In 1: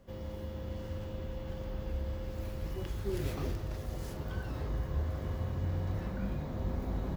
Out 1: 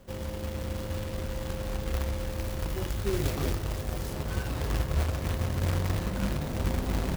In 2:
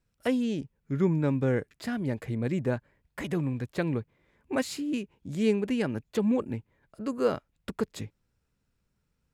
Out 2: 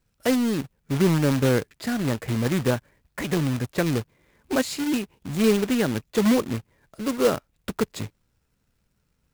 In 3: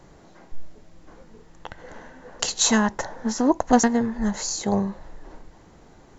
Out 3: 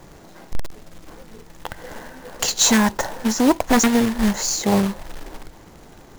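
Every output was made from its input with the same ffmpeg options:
-af "acrusher=bits=2:mode=log:mix=0:aa=0.000001,acontrast=32,aeval=exprs='0.422*(abs(mod(val(0)/0.422+3,4)-2)-1)':c=same"

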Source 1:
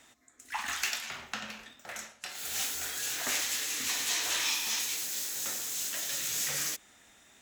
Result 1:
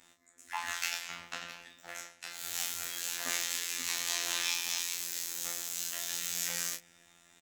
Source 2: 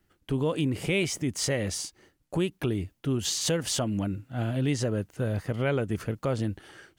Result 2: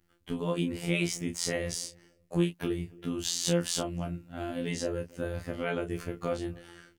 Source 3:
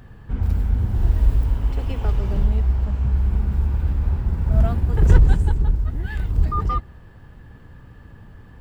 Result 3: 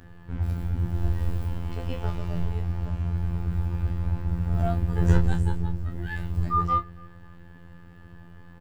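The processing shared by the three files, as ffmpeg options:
-filter_complex "[0:a]afftfilt=real='hypot(re,im)*cos(PI*b)':imag='0':win_size=2048:overlap=0.75,asplit=2[s0][s1];[s1]adelay=29,volume=0.447[s2];[s0][s2]amix=inputs=2:normalize=0,asplit=2[s3][s4];[s4]adelay=279,lowpass=f=990:p=1,volume=0.0708,asplit=2[s5][s6];[s6]adelay=279,lowpass=f=990:p=1,volume=0.3[s7];[s3][s5][s7]amix=inputs=3:normalize=0"

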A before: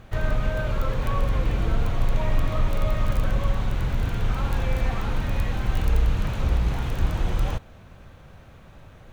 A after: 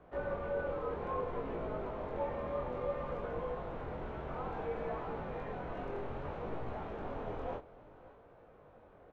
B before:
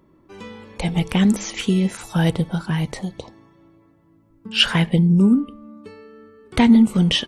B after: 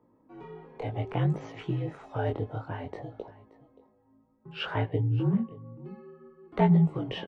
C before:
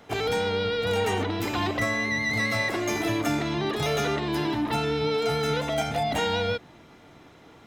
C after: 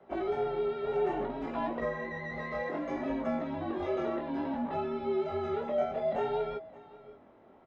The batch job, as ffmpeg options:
-filter_complex "[0:a]bandpass=f=620:t=q:w=1.1:csg=0,aemphasis=mode=reproduction:type=50fm,asplit=2[s0][s1];[s1]aecho=0:1:577:0.106[s2];[s0][s2]amix=inputs=2:normalize=0,flanger=delay=17:depth=7.3:speed=0.6,afreqshift=-58"

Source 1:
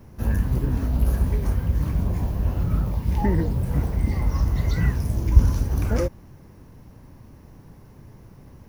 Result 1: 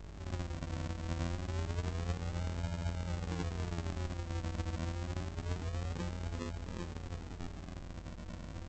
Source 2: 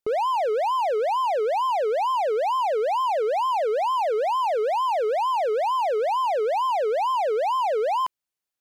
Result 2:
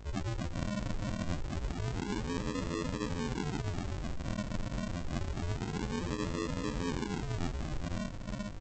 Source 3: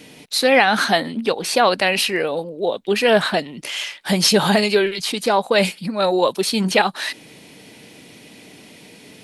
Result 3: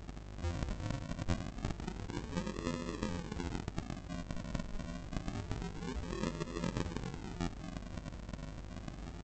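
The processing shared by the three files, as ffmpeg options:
-af "areverse,acompressor=threshold=0.0251:ratio=10,areverse,aeval=exprs='val(0)+0.00224*sin(2*PI*3100*n/s)':c=same,bandreject=f=50:t=h:w=6,bandreject=f=100:t=h:w=6,bandreject=f=150:t=h:w=6,bandreject=f=200:t=h:w=6,bandreject=f=250:t=h:w=6,aecho=1:1:400|760|1084|1376|1638:0.631|0.398|0.251|0.158|0.1,alimiter=level_in=1.06:limit=0.0631:level=0:latency=1:release=400,volume=0.944,adynamicequalizer=threshold=0.00178:dfrequency=3000:dqfactor=2:tfrequency=3000:tqfactor=2:attack=5:release=100:ratio=0.375:range=3:mode=cutabove:tftype=bell,afftfilt=real='hypot(re,im)*cos(PI*b)':imag='0':win_size=2048:overlap=0.75,aeval=exprs='val(0)+0.00398*(sin(2*PI*50*n/s)+sin(2*PI*2*50*n/s)/2+sin(2*PI*3*50*n/s)/3+sin(2*PI*4*50*n/s)/4+sin(2*PI*5*50*n/s)/5)':c=same,aresample=8000,aresample=44100,aresample=16000,acrusher=samples=30:mix=1:aa=0.000001:lfo=1:lforange=18:lforate=0.27,aresample=44100,volume=1.12"

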